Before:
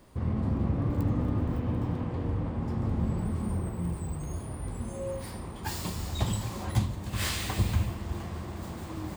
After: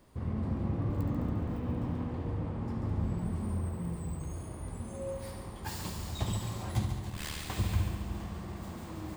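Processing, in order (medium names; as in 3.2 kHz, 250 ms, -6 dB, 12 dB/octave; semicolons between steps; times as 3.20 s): 7.10–7.50 s: AM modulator 75 Hz, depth 95%; on a send: multi-head delay 70 ms, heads first and second, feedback 58%, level -11 dB; on the sum: trim -5 dB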